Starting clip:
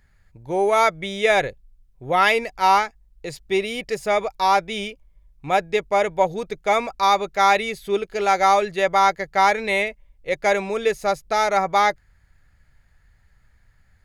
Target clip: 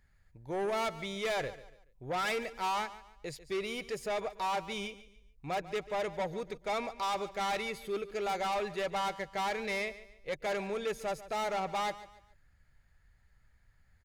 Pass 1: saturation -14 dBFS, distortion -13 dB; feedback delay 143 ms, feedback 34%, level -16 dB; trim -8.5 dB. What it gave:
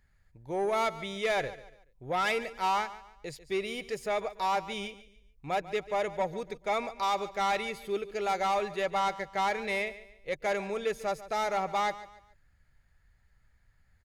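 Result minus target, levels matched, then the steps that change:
saturation: distortion -6 dB
change: saturation -21 dBFS, distortion -7 dB

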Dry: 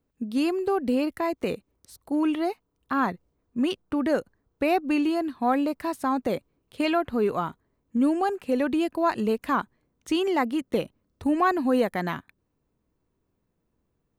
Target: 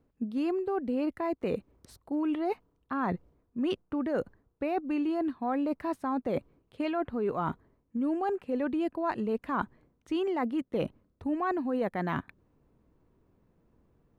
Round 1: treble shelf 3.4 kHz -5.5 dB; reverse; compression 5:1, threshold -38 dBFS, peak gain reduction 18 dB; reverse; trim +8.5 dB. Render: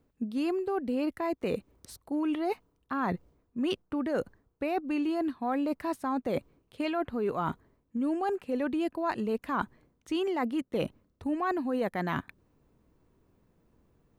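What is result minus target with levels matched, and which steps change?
8 kHz band +8.0 dB
change: treble shelf 3.4 kHz -15.5 dB

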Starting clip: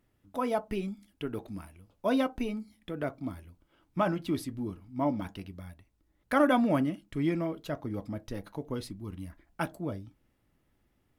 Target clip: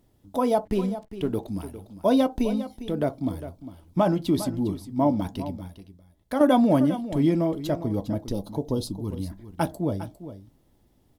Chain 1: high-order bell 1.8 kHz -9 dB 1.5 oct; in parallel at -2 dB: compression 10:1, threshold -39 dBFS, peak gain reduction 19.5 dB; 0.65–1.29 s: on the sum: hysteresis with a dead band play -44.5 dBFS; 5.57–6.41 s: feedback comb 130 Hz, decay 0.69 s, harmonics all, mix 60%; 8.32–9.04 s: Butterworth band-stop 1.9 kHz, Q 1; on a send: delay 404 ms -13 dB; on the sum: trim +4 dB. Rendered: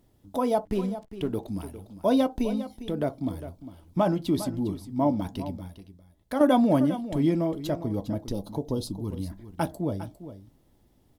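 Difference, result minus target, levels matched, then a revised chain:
compression: peak gain reduction +9.5 dB
high-order bell 1.8 kHz -9 dB 1.5 oct; in parallel at -2 dB: compression 10:1, threshold -28.5 dBFS, peak gain reduction 10 dB; 0.65–1.29 s: on the sum: hysteresis with a dead band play -44.5 dBFS; 5.57–6.41 s: feedback comb 130 Hz, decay 0.69 s, harmonics all, mix 60%; 8.32–9.04 s: Butterworth band-stop 1.9 kHz, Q 1; on a send: delay 404 ms -13 dB; on the sum: trim +4 dB

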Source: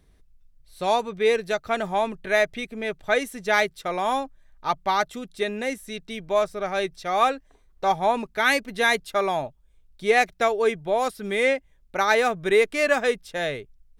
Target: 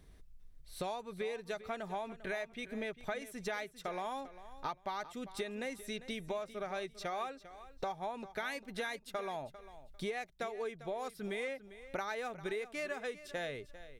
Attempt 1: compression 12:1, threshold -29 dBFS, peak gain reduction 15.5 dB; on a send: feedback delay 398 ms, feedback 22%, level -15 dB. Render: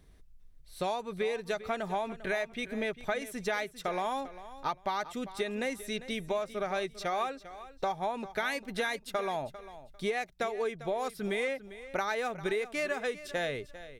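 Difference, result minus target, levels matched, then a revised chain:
compression: peak gain reduction -7 dB
compression 12:1, threshold -36.5 dBFS, peak gain reduction 22.5 dB; on a send: feedback delay 398 ms, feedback 22%, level -15 dB

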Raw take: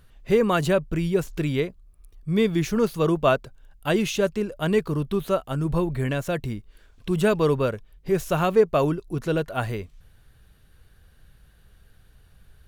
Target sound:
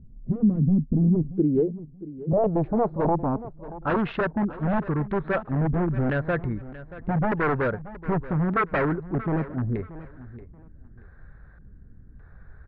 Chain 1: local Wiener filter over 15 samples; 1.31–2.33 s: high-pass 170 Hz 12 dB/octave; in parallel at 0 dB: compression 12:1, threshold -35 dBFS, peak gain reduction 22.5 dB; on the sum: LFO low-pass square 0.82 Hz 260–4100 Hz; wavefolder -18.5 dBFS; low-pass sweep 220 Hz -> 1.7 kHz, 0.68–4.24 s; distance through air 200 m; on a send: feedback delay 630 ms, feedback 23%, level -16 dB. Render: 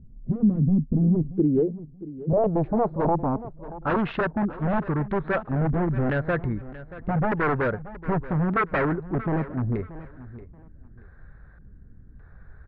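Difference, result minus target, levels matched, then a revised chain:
compression: peak gain reduction -6.5 dB
local Wiener filter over 15 samples; 1.31–2.33 s: high-pass 170 Hz 12 dB/octave; in parallel at 0 dB: compression 12:1, threshold -42 dBFS, peak gain reduction 29 dB; on the sum: LFO low-pass square 0.82 Hz 260–4100 Hz; wavefolder -18.5 dBFS; low-pass sweep 220 Hz -> 1.7 kHz, 0.68–4.24 s; distance through air 200 m; on a send: feedback delay 630 ms, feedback 23%, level -16 dB

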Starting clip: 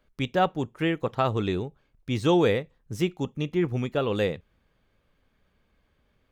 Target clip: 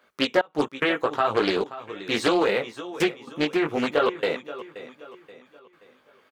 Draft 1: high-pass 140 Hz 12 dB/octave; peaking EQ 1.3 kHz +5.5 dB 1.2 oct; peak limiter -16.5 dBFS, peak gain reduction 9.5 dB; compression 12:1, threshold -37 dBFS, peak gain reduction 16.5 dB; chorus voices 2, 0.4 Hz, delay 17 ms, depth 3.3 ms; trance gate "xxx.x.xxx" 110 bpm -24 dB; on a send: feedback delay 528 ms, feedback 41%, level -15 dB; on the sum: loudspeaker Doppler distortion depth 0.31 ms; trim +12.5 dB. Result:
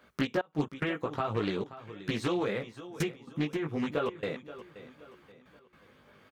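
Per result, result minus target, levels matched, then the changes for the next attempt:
125 Hz band +12.0 dB; compression: peak gain reduction +10.5 dB
change: high-pass 350 Hz 12 dB/octave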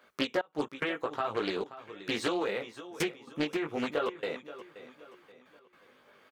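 compression: peak gain reduction +10 dB
change: compression 12:1, threshold -26 dBFS, peak gain reduction 6 dB

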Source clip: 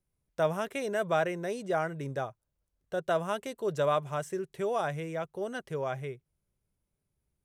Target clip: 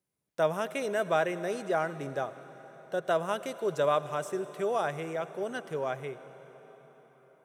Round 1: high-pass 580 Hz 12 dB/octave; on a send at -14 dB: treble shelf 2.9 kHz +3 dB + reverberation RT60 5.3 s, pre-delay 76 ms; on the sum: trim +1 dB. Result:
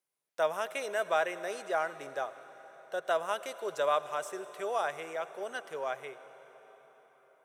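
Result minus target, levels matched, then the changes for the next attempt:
250 Hz band -8.5 dB
change: high-pass 180 Hz 12 dB/octave

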